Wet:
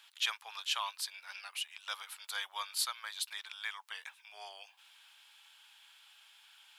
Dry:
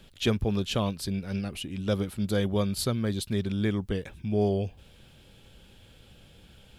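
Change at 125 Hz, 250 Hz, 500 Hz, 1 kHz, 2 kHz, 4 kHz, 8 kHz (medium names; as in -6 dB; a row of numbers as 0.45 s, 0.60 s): under -40 dB, under -40 dB, -30.0 dB, -3.0 dB, -0.5 dB, -0.5 dB, -1.0 dB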